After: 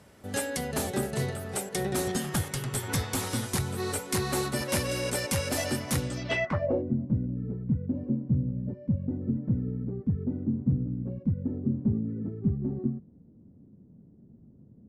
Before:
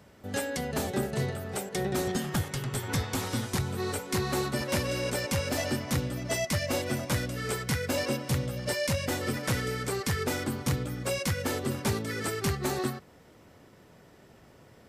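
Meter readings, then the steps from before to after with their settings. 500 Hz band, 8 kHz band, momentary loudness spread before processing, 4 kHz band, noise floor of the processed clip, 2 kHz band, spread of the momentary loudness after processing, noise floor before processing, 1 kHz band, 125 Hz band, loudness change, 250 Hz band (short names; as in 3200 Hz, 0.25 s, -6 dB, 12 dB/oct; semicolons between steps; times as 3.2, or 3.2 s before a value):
-2.0 dB, +0.5 dB, 3 LU, -2.5 dB, -56 dBFS, -2.5 dB, 4 LU, -56 dBFS, -2.5 dB, +2.0 dB, +0.5 dB, +3.0 dB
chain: low-pass sweep 11000 Hz -> 220 Hz, 6.02–6.92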